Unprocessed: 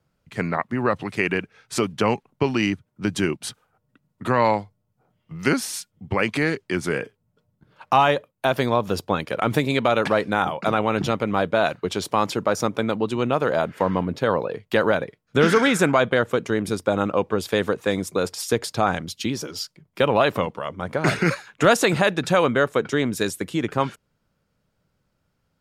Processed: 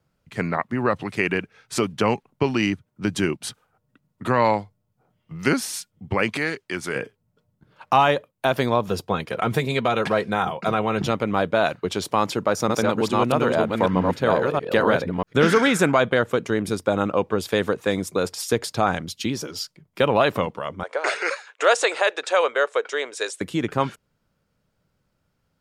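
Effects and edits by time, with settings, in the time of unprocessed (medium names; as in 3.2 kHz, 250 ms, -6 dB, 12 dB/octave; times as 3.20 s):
6.37–6.96 s: bass shelf 490 Hz -8.5 dB
8.87–11.02 s: comb of notches 290 Hz
12.05–15.45 s: chunks repeated in reverse 636 ms, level -1.5 dB
20.83–23.41 s: elliptic band-pass 460–8600 Hz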